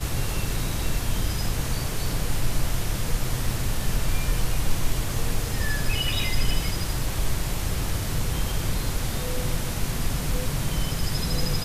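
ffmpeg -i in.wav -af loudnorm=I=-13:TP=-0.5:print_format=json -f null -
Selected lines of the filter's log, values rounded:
"input_i" : "-28.0",
"input_tp" : "-9.7",
"input_lra" : "1.0",
"input_thresh" : "-38.0",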